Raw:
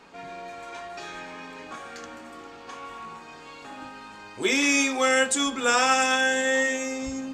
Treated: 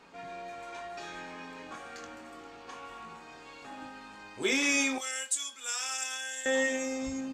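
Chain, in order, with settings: 4.98–6.46 s: differentiator; doubling 23 ms -10.5 dB; trim -5 dB

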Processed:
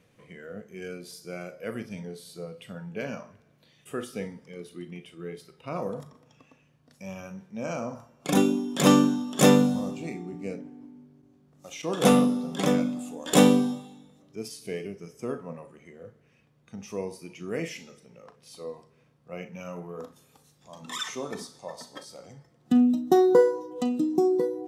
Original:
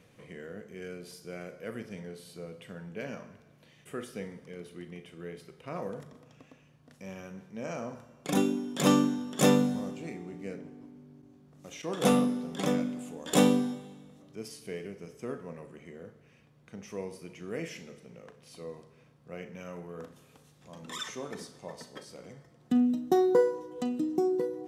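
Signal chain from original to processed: spectral noise reduction 8 dB; trim +5 dB

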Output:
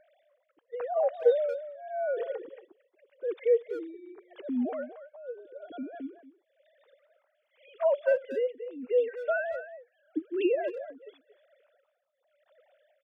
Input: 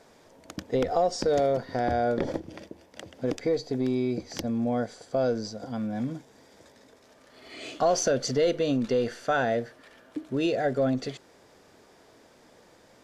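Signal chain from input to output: formants replaced by sine waves; tremolo 0.87 Hz, depth 92%; speakerphone echo 230 ms, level -12 dB

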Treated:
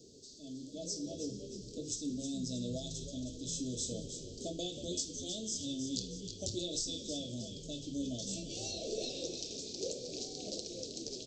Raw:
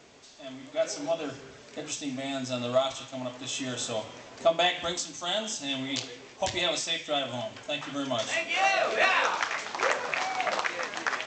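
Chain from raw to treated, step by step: elliptic band-stop 440–4400 Hz, stop band 50 dB; in parallel at -0.5 dB: compression, threshold -43 dBFS, peak gain reduction 13.5 dB; on the sum: frequency-shifting echo 316 ms, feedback 48%, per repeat -86 Hz, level -8 dB; trim -5 dB

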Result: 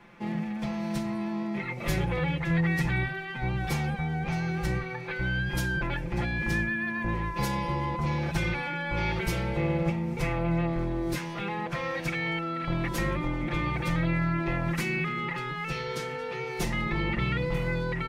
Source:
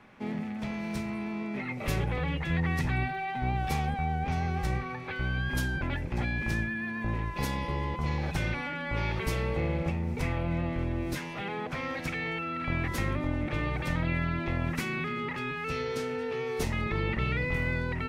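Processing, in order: comb 5.8 ms, depth 86%

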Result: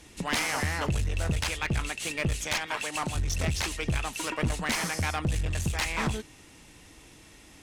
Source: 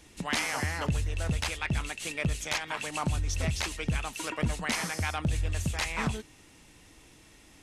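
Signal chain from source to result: 2.66–3.15 s: high-pass 310 Hz 6 dB/octave; one-sided clip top -32 dBFS; trim +3.5 dB

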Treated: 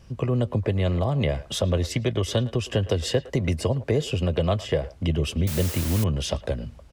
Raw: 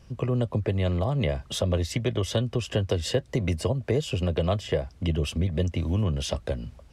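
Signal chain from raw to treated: speakerphone echo 110 ms, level -17 dB; 5.47–6.04 s: word length cut 6-bit, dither triangular; trim +2 dB

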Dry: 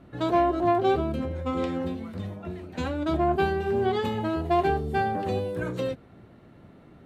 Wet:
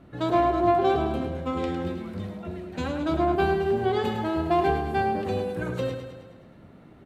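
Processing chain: feedback delay 105 ms, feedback 58%, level -7.5 dB

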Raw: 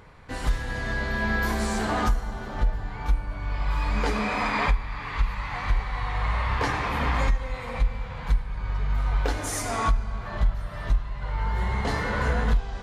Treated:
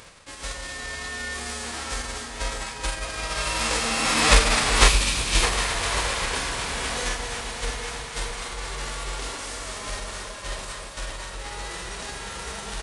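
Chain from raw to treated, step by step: formants flattened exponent 0.3; Doppler pass-by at 4.63 s, 28 m/s, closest 8.5 m; echo whose repeats swap between lows and highs 126 ms, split 1 kHz, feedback 89%, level -10.5 dB; in parallel at -8.5 dB: hard clipper -24 dBFS, distortion -9 dB; on the sum: resampled via 22.05 kHz; multi-tap echo 45/618 ms -7.5/-10 dB; reverse; upward compressor, threshold -32 dBFS; reverse; time-frequency box 4.88–5.43 s, 380–2200 Hz -7 dB; trim +6.5 dB

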